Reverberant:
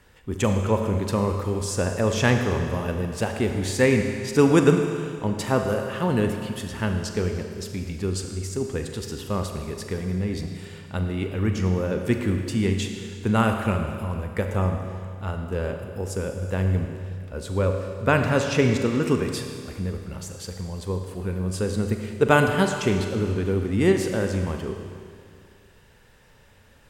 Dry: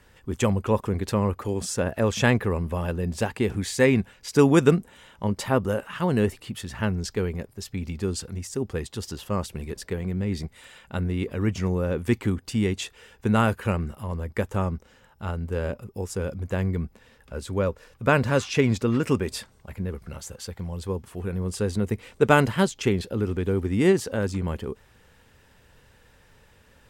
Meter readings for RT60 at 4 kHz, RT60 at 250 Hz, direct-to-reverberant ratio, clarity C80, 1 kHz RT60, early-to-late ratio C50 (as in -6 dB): 2.1 s, 2.2 s, 4.5 dB, 6.5 dB, 2.2 s, 5.5 dB